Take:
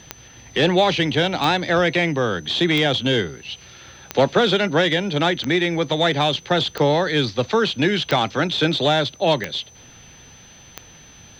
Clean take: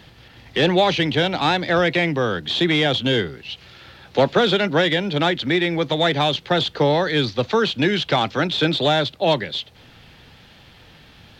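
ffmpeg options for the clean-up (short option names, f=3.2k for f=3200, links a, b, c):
-af "adeclick=t=4,bandreject=f=6.1k:w=30"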